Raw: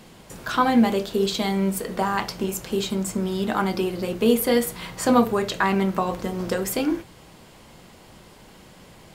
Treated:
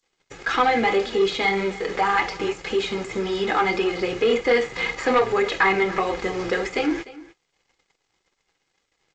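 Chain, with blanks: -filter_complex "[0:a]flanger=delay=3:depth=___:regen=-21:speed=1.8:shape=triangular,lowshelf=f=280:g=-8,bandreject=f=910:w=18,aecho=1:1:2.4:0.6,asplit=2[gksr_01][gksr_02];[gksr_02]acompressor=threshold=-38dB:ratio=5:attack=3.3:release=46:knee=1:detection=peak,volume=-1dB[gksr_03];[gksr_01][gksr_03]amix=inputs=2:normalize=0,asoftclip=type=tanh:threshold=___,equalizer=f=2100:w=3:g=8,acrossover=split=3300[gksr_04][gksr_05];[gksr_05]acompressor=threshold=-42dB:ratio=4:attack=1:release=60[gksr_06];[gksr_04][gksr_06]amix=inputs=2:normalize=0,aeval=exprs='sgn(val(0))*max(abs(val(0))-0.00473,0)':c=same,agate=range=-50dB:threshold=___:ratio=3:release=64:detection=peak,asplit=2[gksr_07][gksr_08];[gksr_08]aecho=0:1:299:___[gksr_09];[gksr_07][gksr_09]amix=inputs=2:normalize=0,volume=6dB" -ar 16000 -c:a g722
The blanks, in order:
4.7, -18dB, -42dB, 0.119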